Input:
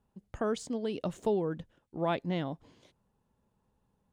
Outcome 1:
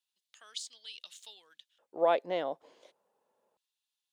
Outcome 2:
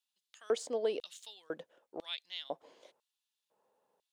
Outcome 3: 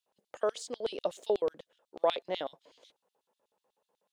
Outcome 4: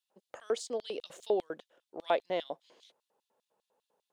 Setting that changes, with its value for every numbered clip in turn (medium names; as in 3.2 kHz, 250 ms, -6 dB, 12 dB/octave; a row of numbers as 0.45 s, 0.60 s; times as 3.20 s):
LFO high-pass, rate: 0.28 Hz, 1 Hz, 8.1 Hz, 5 Hz